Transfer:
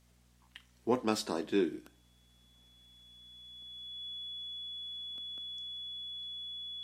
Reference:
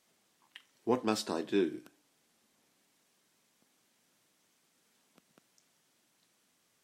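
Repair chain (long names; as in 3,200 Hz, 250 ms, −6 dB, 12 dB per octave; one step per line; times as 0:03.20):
hum removal 60.5 Hz, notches 4
notch filter 3,400 Hz, Q 30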